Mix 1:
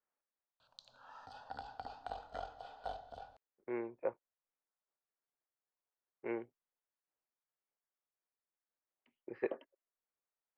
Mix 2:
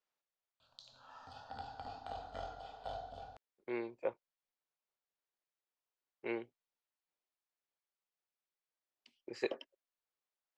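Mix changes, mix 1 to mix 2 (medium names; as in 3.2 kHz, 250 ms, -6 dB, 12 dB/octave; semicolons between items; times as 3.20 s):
speech: remove low-pass 2 kHz 24 dB/octave; background: send +10.5 dB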